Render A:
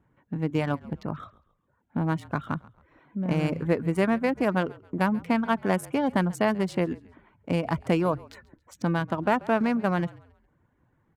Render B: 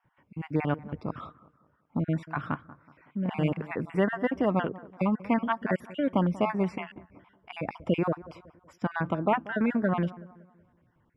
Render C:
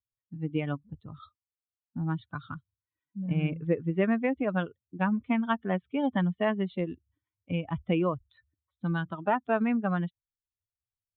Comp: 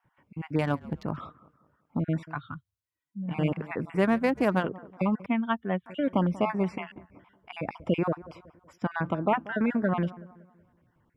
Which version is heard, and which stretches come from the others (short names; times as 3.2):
B
0.59–1.17 from A
2.36–3.32 from C, crossfade 0.10 s
4.01–4.61 from A, crossfade 0.10 s
5.26–5.86 from C